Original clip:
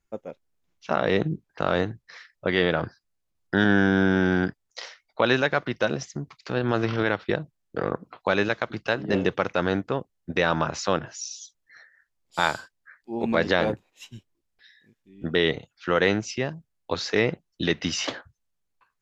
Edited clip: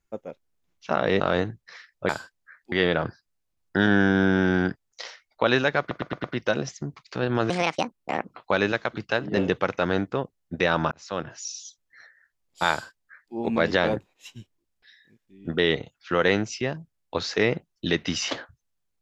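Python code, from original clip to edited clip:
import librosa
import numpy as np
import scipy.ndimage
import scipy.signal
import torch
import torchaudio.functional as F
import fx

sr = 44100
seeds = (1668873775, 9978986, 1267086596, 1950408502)

y = fx.edit(x, sr, fx.cut(start_s=1.2, length_s=0.41),
    fx.stutter(start_s=5.58, slice_s=0.11, count=5),
    fx.speed_span(start_s=6.84, length_s=1.17, speed=1.57),
    fx.fade_in_span(start_s=10.68, length_s=0.5),
    fx.duplicate(start_s=12.48, length_s=0.63, to_s=2.5), tone=tone)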